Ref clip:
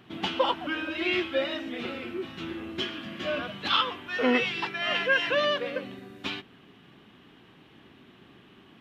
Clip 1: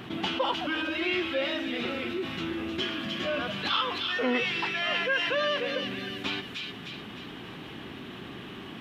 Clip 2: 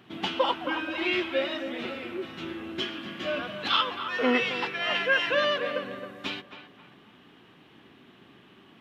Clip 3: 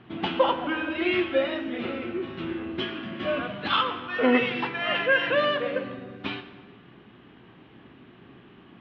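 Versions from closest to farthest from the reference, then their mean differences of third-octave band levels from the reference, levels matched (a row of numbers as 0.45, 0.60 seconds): 2, 3, 1; 1.5, 4.0, 6.0 decibels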